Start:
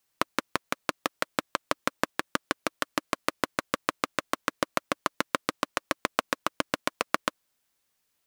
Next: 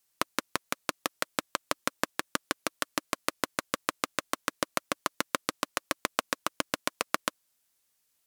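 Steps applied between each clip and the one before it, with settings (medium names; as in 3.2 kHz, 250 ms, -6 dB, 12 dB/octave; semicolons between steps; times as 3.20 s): peaking EQ 11 kHz +7.5 dB 2.2 oct; trim -3.5 dB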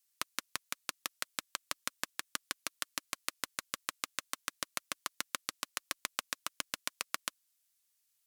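amplifier tone stack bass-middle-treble 5-5-5; trim +3 dB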